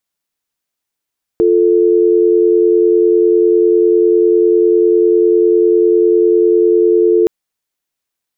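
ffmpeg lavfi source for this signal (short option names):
-f lavfi -i "aevalsrc='0.316*(sin(2*PI*350*t)+sin(2*PI*440*t))':d=5.87:s=44100"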